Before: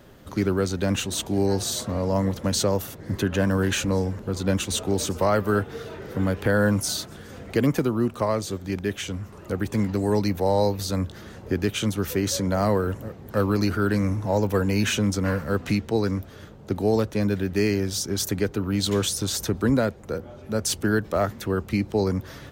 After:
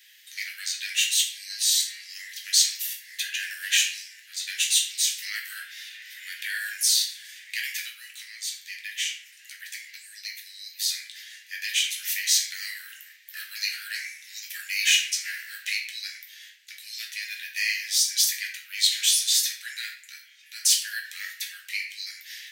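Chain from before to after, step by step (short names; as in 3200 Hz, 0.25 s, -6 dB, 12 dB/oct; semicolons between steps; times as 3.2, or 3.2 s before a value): 8.2–10.8 compressor, threshold -26 dBFS, peak gain reduction 9 dB; steep high-pass 1800 Hz 72 dB/oct; shoebox room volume 88 m³, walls mixed, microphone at 0.9 m; gain +4.5 dB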